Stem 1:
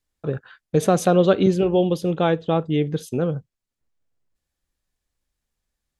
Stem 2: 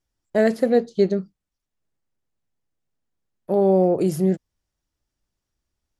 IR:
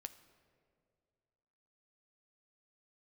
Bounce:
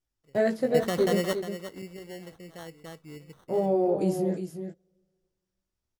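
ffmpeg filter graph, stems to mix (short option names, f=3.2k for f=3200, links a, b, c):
-filter_complex "[0:a]highshelf=f=8.1k:g=7,acrusher=samples=18:mix=1:aa=0.000001,volume=-13dB,asplit=3[a][b][c];[b]volume=-23dB[d];[c]volume=-10.5dB[e];[1:a]flanger=delay=16.5:depth=3.1:speed=2.2,volume=-4.5dB,asplit=4[f][g][h][i];[g]volume=-14.5dB[j];[h]volume=-7.5dB[k];[i]apad=whole_len=264179[l];[a][l]sidechaingate=range=-33dB:threshold=-47dB:ratio=16:detection=peak[m];[2:a]atrim=start_sample=2205[n];[d][j]amix=inputs=2:normalize=0[o];[o][n]afir=irnorm=-1:irlink=0[p];[e][k]amix=inputs=2:normalize=0,aecho=0:1:356:1[q];[m][f][p][q]amix=inputs=4:normalize=0"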